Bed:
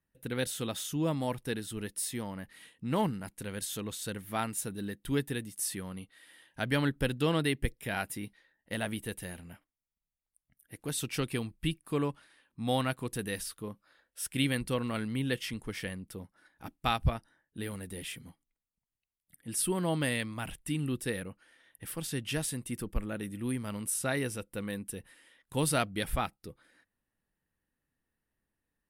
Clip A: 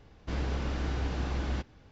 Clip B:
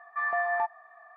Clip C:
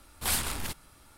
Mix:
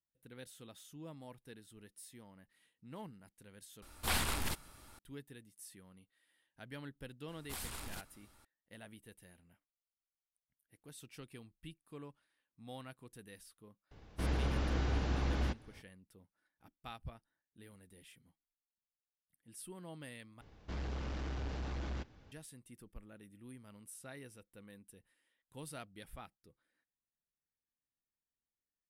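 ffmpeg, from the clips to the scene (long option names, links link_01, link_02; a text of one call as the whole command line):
ffmpeg -i bed.wav -i cue0.wav -i cue1.wav -i cue2.wav -filter_complex "[3:a]asplit=2[link_01][link_02];[1:a]asplit=2[link_03][link_04];[0:a]volume=-19dB[link_05];[link_01]acrossover=split=4200[link_06][link_07];[link_07]acompressor=threshold=-36dB:ratio=4:attack=1:release=60[link_08];[link_06][link_08]amix=inputs=2:normalize=0[link_09];[link_02]acompressor=threshold=-31dB:ratio=6:attack=3.2:release=140:knee=1:detection=peak[link_10];[link_04]asoftclip=type=tanh:threshold=-31dB[link_11];[link_05]asplit=3[link_12][link_13][link_14];[link_12]atrim=end=3.824[link_15];[link_09]atrim=end=1.17,asetpts=PTS-STARTPTS,volume=-1.5dB[link_16];[link_13]atrim=start=4.986:end=20.414[link_17];[link_11]atrim=end=1.91,asetpts=PTS-STARTPTS,volume=-4.5dB[link_18];[link_14]atrim=start=22.316[link_19];[link_10]atrim=end=1.17,asetpts=PTS-STARTPTS,volume=-9dB,afade=type=in:duration=0.004:curve=hsin,afade=type=out:start_time=1.166:duration=0.004:curve=hsin,adelay=7280[link_20];[link_03]atrim=end=1.91,asetpts=PTS-STARTPTS,volume=-2dB,afade=type=in:duration=0.004:curve=hsin,afade=type=out:start_time=1.906:duration=0.004:curve=hsin,adelay=13910[link_21];[link_15][link_16]acrossfade=duration=0.004:curve1=hsin:curve2=hsin[link_22];[link_22][link_17]acrossfade=duration=0.004:curve1=hsin:curve2=hsin[link_23];[link_23][link_18]acrossfade=duration=0.004:curve1=hsin:curve2=hsin[link_24];[link_24][link_19]acrossfade=duration=0.004:curve1=hsin:curve2=hsin[link_25];[link_25][link_20][link_21]amix=inputs=3:normalize=0" out.wav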